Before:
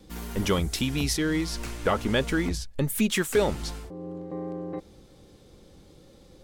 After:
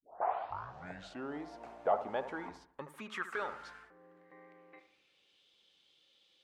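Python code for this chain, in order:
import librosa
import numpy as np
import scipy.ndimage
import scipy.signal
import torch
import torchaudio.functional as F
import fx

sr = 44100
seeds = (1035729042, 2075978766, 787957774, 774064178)

y = fx.tape_start_head(x, sr, length_s=1.44)
y = fx.filter_sweep_bandpass(y, sr, from_hz=700.0, to_hz=3100.0, start_s=1.82, end_s=5.48, q=4.8)
y = fx.echo_bbd(y, sr, ms=73, stages=1024, feedback_pct=41, wet_db=-11.0)
y = F.gain(torch.from_numpy(y), 2.5).numpy()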